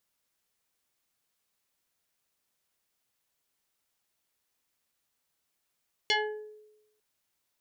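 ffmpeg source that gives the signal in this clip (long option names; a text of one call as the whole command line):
ffmpeg -f lavfi -i "aevalsrc='0.0891*pow(10,-3*t/0.97)*sin(2*PI*426*t+3.7*pow(10,-3*t/0.62)*sin(2*PI*2.99*426*t))':duration=0.9:sample_rate=44100" out.wav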